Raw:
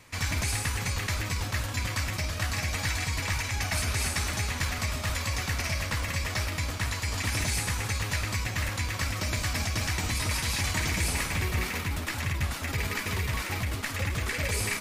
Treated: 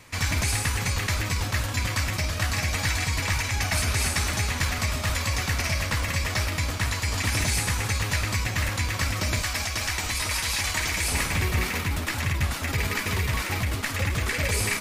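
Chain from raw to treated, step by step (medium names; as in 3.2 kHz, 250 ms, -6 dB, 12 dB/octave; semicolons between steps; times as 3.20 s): 9.41–11.11 s: peaking EQ 150 Hz -10 dB 2.7 oct; trim +4 dB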